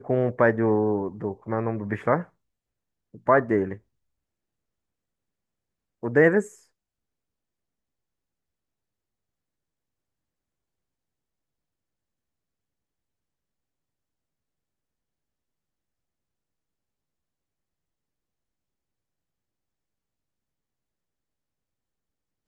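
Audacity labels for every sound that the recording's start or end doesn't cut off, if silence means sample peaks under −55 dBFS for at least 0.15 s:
3.140000	3.810000	sound
6.030000	6.660000	sound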